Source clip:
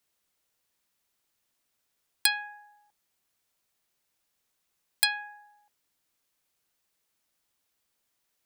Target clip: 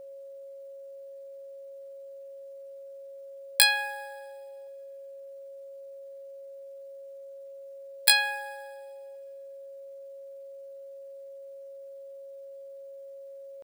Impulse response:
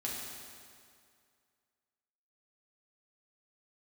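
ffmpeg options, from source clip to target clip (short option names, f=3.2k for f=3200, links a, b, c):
-filter_complex "[0:a]atempo=0.62,aeval=exprs='val(0)+0.00562*sin(2*PI*550*n/s)':c=same,asplit=2[a][b];[1:a]atrim=start_sample=2205,adelay=24[c];[b][c]afir=irnorm=-1:irlink=0,volume=-21.5dB[d];[a][d]amix=inputs=2:normalize=0,volume=3dB"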